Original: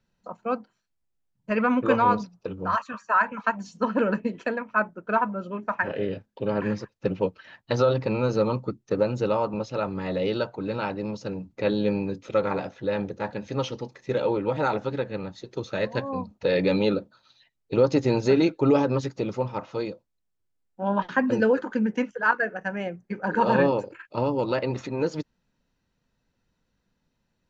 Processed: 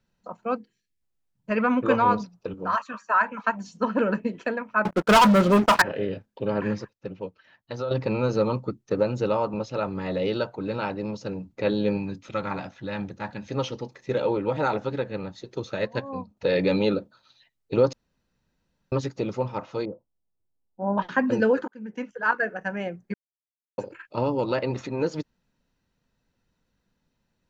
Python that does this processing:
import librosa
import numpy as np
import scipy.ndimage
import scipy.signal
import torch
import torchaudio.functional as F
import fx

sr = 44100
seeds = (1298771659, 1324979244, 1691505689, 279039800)

y = fx.spec_box(x, sr, start_s=0.56, length_s=0.46, low_hz=500.0, high_hz=1600.0, gain_db=-18)
y = fx.highpass(y, sr, hz=170.0, slope=12, at=(2.54, 3.43))
y = fx.leveller(y, sr, passes=5, at=(4.85, 5.82))
y = fx.peak_eq(y, sr, hz=460.0, db=-11.0, octaves=0.77, at=(11.97, 13.48))
y = fx.upward_expand(y, sr, threshold_db=-38.0, expansion=1.5, at=(15.75, 16.37))
y = fx.lowpass(y, sr, hz=1000.0, slope=24, at=(19.85, 20.98))
y = fx.edit(y, sr, fx.clip_gain(start_s=6.93, length_s=0.98, db=-9.5),
    fx.room_tone_fill(start_s=17.93, length_s=0.99),
    fx.fade_in_span(start_s=21.68, length_s=0.72),
    fx.silence(start_s=23.14, length_s=0.64), tone=tone)